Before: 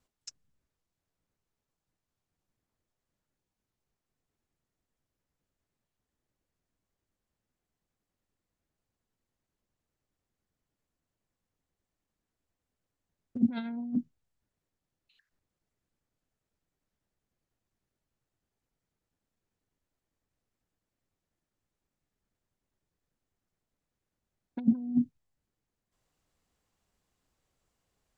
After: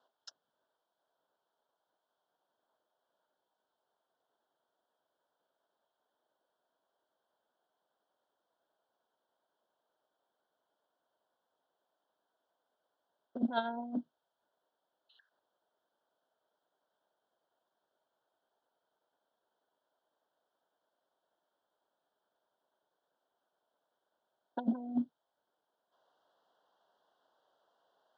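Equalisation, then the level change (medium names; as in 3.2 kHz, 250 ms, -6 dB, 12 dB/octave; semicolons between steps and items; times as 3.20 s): Butterworth band-stop 2.3 kHz, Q 1.4; cabinet simulation 400–4500 Hz, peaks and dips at 650 Hz +6 dB, 940 Hz +7 dB, 1.5 kHz +8 dB, 3.2 kHz +10 dB; peaking EQ 610 Hz +7 dB 1.5 oct; +1.0 dB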